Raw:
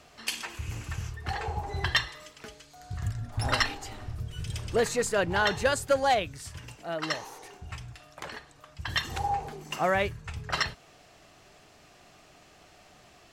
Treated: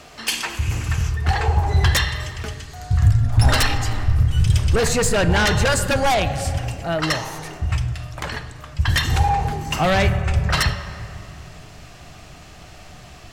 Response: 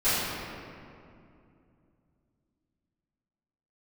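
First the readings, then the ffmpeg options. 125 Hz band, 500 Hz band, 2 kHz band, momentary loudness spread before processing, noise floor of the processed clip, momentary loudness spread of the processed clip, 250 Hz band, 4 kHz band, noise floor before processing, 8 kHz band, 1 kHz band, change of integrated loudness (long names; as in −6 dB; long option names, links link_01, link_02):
+17.5 dB, +6.0 dB, +7.5 dB, 17 LU, −42 dBFS, 14 LU, +12.5 dB, +8.5 dB, −57 dBFS, +11.5 dB, +7.5 dB, +10.0 dB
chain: -filter_complex "[0:a]asplit=2[link_01][link_02];[1:a]atrim=start_sample=2205[link_03];[link_02][link_03]afir=irnorm=-1:irlink=0,volume=-26.5dB[link_04];[link_01][link_04]amix=inputs=2:normalize=0,aeval=exprs='0.282*sin(PI/2*3.16*val(0)/0.282)':channel_layout=same,asubboost=boost=3:cutoff=180,volume=-2.5dB"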